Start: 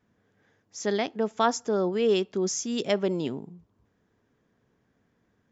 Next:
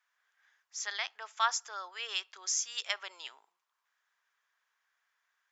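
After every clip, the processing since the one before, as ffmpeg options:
-af "highpass=f=1.1k:w=0.5412,highpass=f=1.1k:w=1.3066"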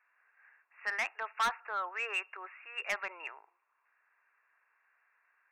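-af "afftfilt=real='re*between(b*sr/4096,280,2800)':imag='im*between(b*sr/4096,280,2800)':win_size=4096:overlap=0.75,asoftclip=type=tanh:threshold=-33dB,volume=7.5dB"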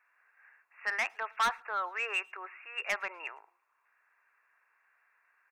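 -filter_complex "[0:a]asplit=2[a][b];[b]adelay=110,highpass=300,lowpass=3.4k,asoftclip=type=hard:threshold=-35.5dB,volume=-27dB[c];[a][c]amix=inputs=2:normalize=0,volume=2dB"

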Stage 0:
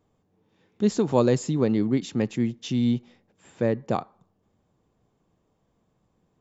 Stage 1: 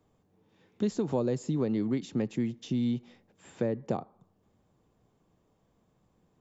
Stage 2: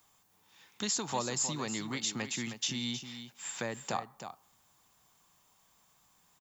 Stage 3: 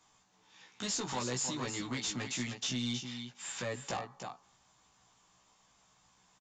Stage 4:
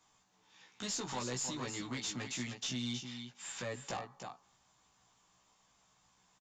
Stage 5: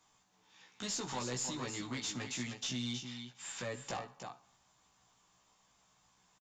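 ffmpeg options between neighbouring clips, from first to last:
-filter_complex "[0:a]acrossover=split=110|780[a][b][c];[a]acompressor=threshold=-48dB:ratio=4[d];[b]acompressor=threshold=-27dB:ratio=4[e];[c]acompressor=threshold=-47dB:ratio=4[f];[d][e][f]amix=inputs=3:normalize=0"
-af "crystalizer=i=6:c=0,lowshelf=f=660:t=q:w=1.5:g=-10.5,aecho=1:1:314:0.316,volume=1.5dB"
-filter_complex "[0:a]aresample=16000,asoftclip=type=tanh:threshold=-32.5dB,aresample=44100,asplit=2[a][b];[b]adelay=16,volume=-2dB[c];[a][c]amix=inputs=2:normalize=0"
-af "aeval=exprs='0.0596*(cos(1*acos(clip(val(0)/0.0596,-1,1)))-cos(1*PI/2))+0.00531*(cos(2*acos(clip(val(0)/0.0596,-1,1)))-cos(2*PI/2))+0.00266*(cos(4*acos(clip(val(0)/0.0596,-1,1)))-cos(4*PI/2))+0.00119*(cos(6*acos(clip(val(0)/0.0596,-1,1)))-cos(6*PI/2))':c=same,volume=-3dB"
-af "aecho=1:1:65|130|195|260:0.119|0.0523|0.023|0.0101"

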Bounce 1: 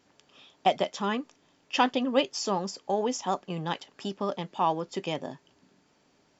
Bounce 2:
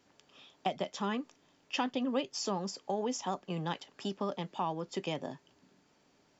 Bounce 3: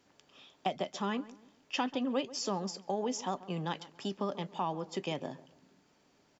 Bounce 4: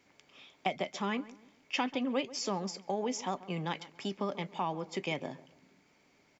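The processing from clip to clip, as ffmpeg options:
-filter_complex "[0:a]acrossover=split=240[a][b];[b]acompressor=threshold=-30dB:ratio=3[c];[a][c]amix=inputs=2:normalize=0,volume=-2.5dB"
-filter_complex "[0:a]asplit=2[a][b];[b]adelay=138,lowpass=f=1.5k:p=1,volume=-17dB,asplit=2[c][d];[d]adelay=138,lowpass=f=1.5k:p=1,volume=0.36,asplit=2[e][f];[f]adelay=138,lowpass=f=1.5k:p=1,volume=0.36[g];[a][c][e][g]amix=inputs=4:normalize=0"
-af "equalizer=f=2.2k:w=6.2:g=13"

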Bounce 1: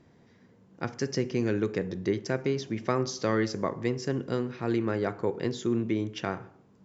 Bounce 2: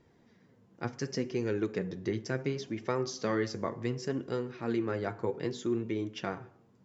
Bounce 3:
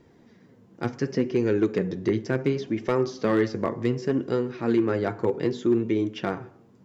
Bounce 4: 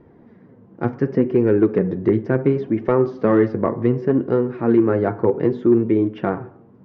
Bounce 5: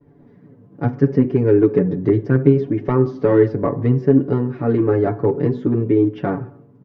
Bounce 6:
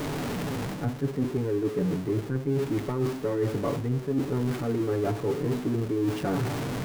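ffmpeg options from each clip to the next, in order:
-af "flanger=delay=2.1:depth=6.7:regen=43:speed=0.68:shape=sinusoidal"
-filter_complex "[0:a]equalizer=f=300:t=o:w=1.4:g=4,acrossover=split=3800[a][b];[b]acompressor=threshold=-57dB:ratio=6[c];[a][c]amix=inputs=2:normalize=0,asoftclip=type=hard:threshold=-20dB,volume=6dB"
-af "lowpass=1.4k,volume=7dB"
-af "equalizer=f=1.4k:w=0.33:g=-6.5,agate=range=-33dB:threshold=-47dB:ratio=3:detection=peak,aecho=1:1:7:0.93,volume=2dB"
-af "aeval=exprs='val(0)+0.5*0.075*sgn(val(0))':c=same,areverse,acompressor=threshold=-21dB:ratio=10,areverse,volume=-3dB"

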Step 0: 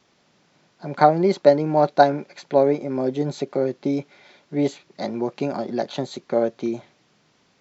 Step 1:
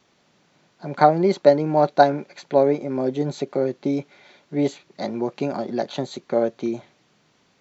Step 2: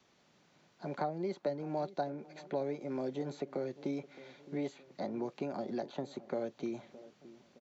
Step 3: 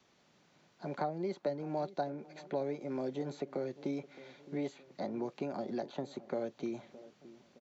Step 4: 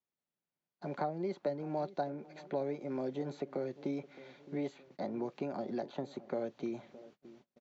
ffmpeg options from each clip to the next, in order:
-af "bandreject=f=5.1k:w=18"
-filter_complex "[0:a]acrossover=split=200|870|2100[a][b][c][d];[a]acompressor=threshold=-43dB:ratio=4[e];[b]acompressor=threshold=-30dB:ratio=4[f];[c]acompressor=threshold=-45dB:ratio=4[g];[d]acompressor=threshold=-52dB:ratio=4[h];[e][f][g][h]amix=inputs=4:normalize=0,asplit=2[i][j];[j]adelay=616,lowpass=f=1k:p=1,volume=-17dB,asplit=2[k][l];[l]adelay=616,lowpass=f=1k:p=1,volume=0.5,asplit=2[m][n];[n]adelay=616,lowpass=f=1k:p=1,volume=0.5,asplit=2[o][p];[p]adelay=616,lowpass=f=1k:p=1,volume=0.5[q];[i][k][m][o][q]amix=inputs=5:normalize=0,volume=-6.5dB"
-af anull
-af "agate=range=-29dB:threshold=-58dB:ratio=16:detection=peak,highshelf=f=6.5k:g=-9"

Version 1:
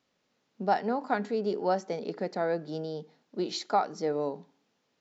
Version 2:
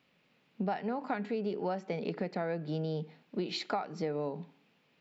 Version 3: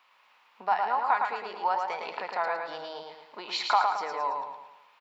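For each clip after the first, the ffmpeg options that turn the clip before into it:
-af "equalizer=f=160:t=o:w=0.67:g=8,equalizer=f=2.5k:t=o:w=0.67:g=9,equalizer=f=6.3k:t=o:w=0.67:g=-10,acompressor=threshold=-34dB:ratio=6,volume=3dB"
-af "highpass=f=990:t=q:w=4.9,aecho=1:1:110|220|330|440|550|660:0.631|0.284|0.128|0.0575|0.0259|0.0116,volume=5dB"

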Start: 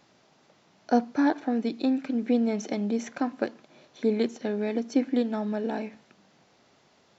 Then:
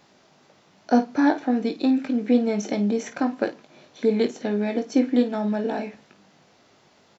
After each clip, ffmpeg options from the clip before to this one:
-af "aecho=1:1:20|53:0.422|0.224,volume=3.5dB"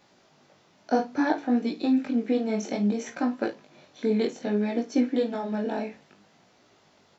-af "flanger=delay=16.5:depth=6.8:speed=0.61"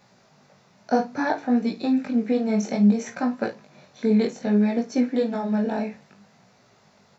-af "equalizer=f=125:t=o:w=0.33:g=8,equalizer=f=200:t=o:w=0.33:g=6,equalizer=f=315:t=o:w=0.33:g=-11,equalizer=f=3.15k:t=o:w=0.33:g=-7,volume=3dB"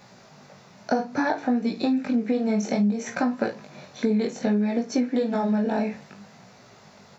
-af "acompressor=threshold=-28dB:ratio=5,volume=7dB"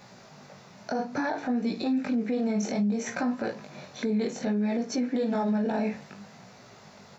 -af "alimiter=limit=-20.5dB:level=0:latency=1:release=25"

